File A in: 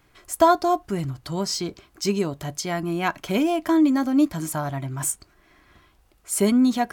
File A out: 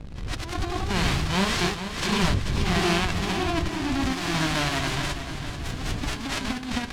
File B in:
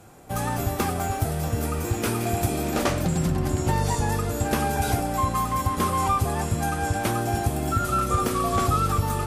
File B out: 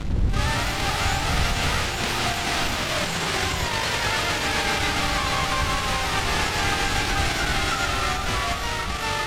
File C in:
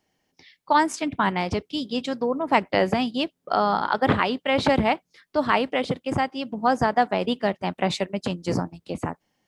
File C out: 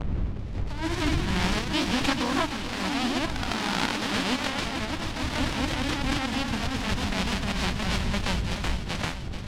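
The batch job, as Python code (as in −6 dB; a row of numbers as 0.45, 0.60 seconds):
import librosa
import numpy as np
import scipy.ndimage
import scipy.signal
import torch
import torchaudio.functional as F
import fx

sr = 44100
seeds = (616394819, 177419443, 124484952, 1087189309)

p1 = fx.envelope_flatten(x, sr, power=0.1)
p2 = fx.dmg_wind(p1, sr, seeds[0], corner_hz=90.0, level_db=-32.0)
p3 = fx.quant_dither(p2, sr, seeds[1], bits=6, dither='none')
p4 = p2 + (p3 * 10.0 ** (-5.0 / 20.0))
p5 = fx.over_compress(p4, sr, threshold_db=-21.0, ratio=-0.5)
p6 = scipy.signal.sosfilt(scipy.signal.butter(2, 3700.0, 'lowpass', fs=sr, output='sos'), p5)
p7 = fx.echo_pitch(p6, sr, ms=114, semitones=1, count=3, db_per_echo=-3.0)
p8 = fx.echo_feedback(p7, sr, ms=436, feedback_pct=58, wet_db=-10.5)
p9 = fx.pre_swell(p8, sr, db_per_s=74.0)
y = librosa.util.normalize(p9) * 10.0 ** (-9 / 20.0)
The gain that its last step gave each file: −3.5, −1.0, −5.5 decibels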